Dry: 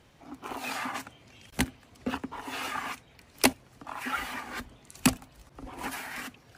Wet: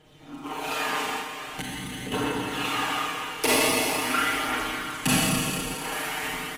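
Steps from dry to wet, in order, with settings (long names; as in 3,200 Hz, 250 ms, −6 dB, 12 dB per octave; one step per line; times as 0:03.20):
comb filter 6.5 ms, depth 93%
four-comb reverb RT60 3.2 s, combs from 28 ms, DRR −8 dB
phase shifter 0.44 Hz, delay 2.3 ms, feedback 23%
thirty-one-band graphic EQ 400 Hz +6 dB, 3,150 Hz +5 dB, 5,000 Hz −3 dB
0:01.21–0:02.12: downward compressor 6 to 1, threshold −28 dBFS, peak gain reduction 9.5 dB
0:05.74–0:06.23: low-shelf EQ 190 Hz −11 dB
boost into a limiter +5.5 dB
level −9 dB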